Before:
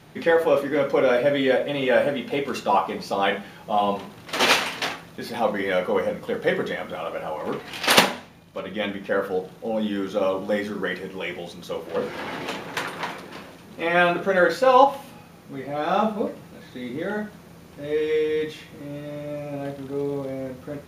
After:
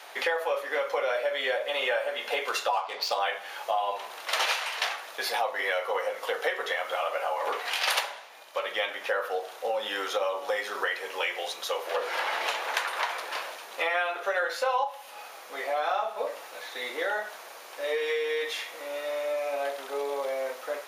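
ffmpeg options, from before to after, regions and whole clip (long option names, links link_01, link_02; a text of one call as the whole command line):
ffmpeg -i in.wav -filter_complex "[0:a]asettb=1/sr,asplit=3[link_01][link_02][link_03];[link_01]atrim=end=2.734[link_04];[link_02]atrim=start=2.73:end=3.19,asetpts=PTS-STARTPTS,afade=type=in:duration=0.004:curve=qsin,afade=type=out:start_time=0.456:duration=0.004:curve=qsin,equalizer=frequency=4300:width=1.4:gain=8,adynamicsmooth=sensitivity=7:basefreq=3300[link_05];[link_03]atrim=start=3.186[link_06];[link_04][link_05]acrossfade=duration=0.004:curve1=hsin:curve2=qsin[link_07];[link_07][link_06]acrossfade=duration=0.004:curve1=qsin:curve2=hsin,highpass=frequency=590:width=0.5412,highpass=frequency=590:width=1.3066,acompressor=threshold=-34dB:ratio=6,volume=8dB" out.wav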